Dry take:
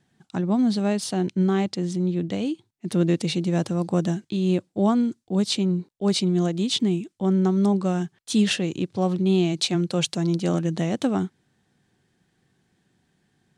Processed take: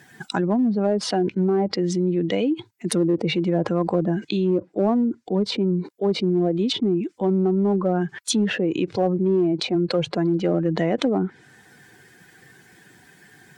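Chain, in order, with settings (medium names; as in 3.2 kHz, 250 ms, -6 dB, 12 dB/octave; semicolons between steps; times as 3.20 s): expander on every frequency bin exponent 1.5; high-pass 310 Hz 12 dB/octave; low-pass that closes with the level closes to 660 Hz, closed at -25.5 dBFS; in parallel at -10 dB: hard clipper -26 dBFS, distortion -12 dB; on the sum: level flattener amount 70%; trim +4 dB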